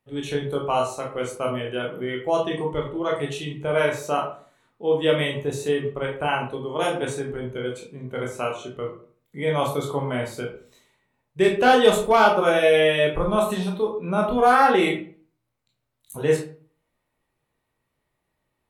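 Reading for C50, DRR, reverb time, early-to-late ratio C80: 7.0 dB, -1.0 dB, 0.45 s, 11.5 dB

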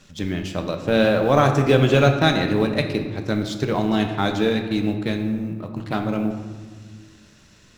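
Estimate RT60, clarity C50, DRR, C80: 1.6 s, 7.0 dB, 4.5 dB, 9.0 dB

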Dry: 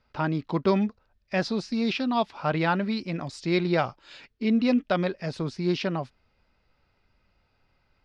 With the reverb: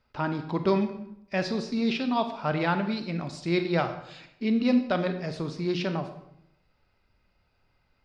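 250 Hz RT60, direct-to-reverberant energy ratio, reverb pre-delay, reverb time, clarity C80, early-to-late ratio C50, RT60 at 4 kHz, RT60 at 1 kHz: 0.95 s, 7.5 dB, 27 ms, 0.80 s, 12.0 dB, 10.0 dB, 0.60 s, 0.70 s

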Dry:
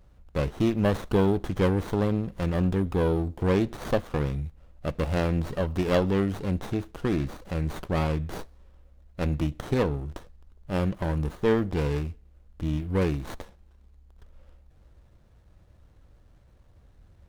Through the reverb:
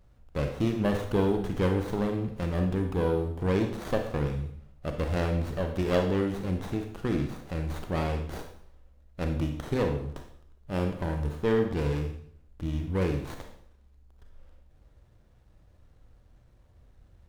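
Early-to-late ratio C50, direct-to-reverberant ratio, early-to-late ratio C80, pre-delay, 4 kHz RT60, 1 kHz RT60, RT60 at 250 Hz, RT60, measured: 6.5 dB, 4.5 dB, 10.0 dB, 29 ms, 0.60 s, 0.60 s, 0.65 s, 0.60 s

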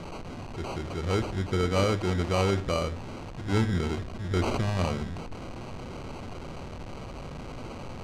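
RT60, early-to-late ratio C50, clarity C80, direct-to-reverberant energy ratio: 0.60 s, 16.5 dB, 20.5 dB, 10.5 dB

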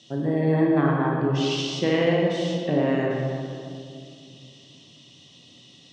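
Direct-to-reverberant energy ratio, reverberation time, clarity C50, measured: -2.0 dB, 2.4 s, 0.0 dB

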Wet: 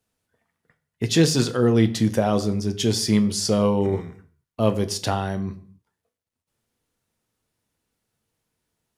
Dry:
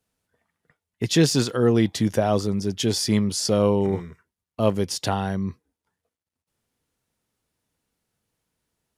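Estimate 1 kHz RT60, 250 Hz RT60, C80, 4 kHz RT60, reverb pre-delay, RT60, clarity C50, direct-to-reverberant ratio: 0.55 s, n/a, 19.0 dB, 0.45 s, 9 ms, 0.55 s, 16.0 dB, 9.0 dB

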